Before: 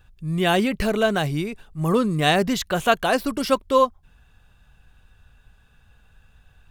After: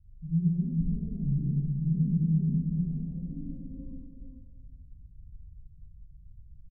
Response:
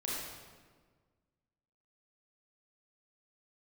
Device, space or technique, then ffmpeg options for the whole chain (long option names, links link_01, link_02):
club heard from the street: -filter_complex "[0:a]alimiter=limit=-17dB:level=0:latency=1,lowpass=frequency=160:width=0.5412,lowpass=frequency=160:width=1.3066[link_01];[1:a]atrim=start_sample=2205[link_02];[link_01][link_02]afir=irnorm=-1:irlink=0,aecho=1:1:136|431:0.15|0.422"